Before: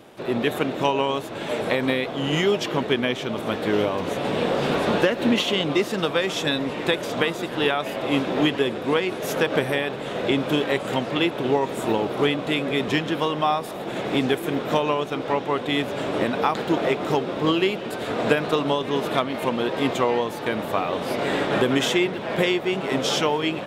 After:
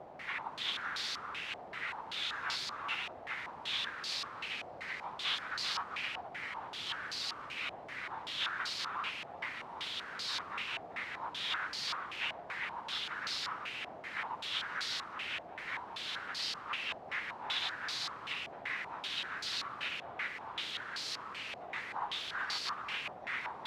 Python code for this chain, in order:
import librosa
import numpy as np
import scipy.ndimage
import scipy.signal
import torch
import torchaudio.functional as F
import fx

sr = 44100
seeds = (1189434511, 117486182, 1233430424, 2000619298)

p1 = fx.spec_gate(x, sr, threshold_db=-30, keep='weak')
p2 = fx.tube_stage(p1, sr, drive_db=41.0, bias=0.7)
p3 = fx.low_shelf_res(p2, sr, hz=570.0, db=-13.5, q=1.5)
p4 = fx.quant_dither(p3, sr, seeds[0], bits=6, dither='triangular')
p5 = p3 + (p4 * 10.0 ** (-7.5 / 20.0))
p6 = scipy.signal.sosfilt(scipy.signal.butter(2, 79.0, 'highpass', fs=sr, output='sos'), p5)
p7 = p6 + fx.echo_single(p6, sr, ms=390, db=-4.0, dry=0)
y = fx.filter_held_lowpass(p7, sr, hz=5.2, low_hz=710.0, high_hz=4500.0)